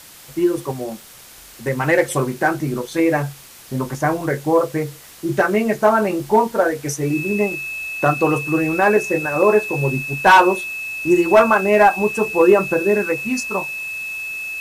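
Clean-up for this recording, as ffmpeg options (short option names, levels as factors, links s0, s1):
-af "adeclick=t=4,bandreject=f=2600:w=30,afftdn=nr=20:nf=-41"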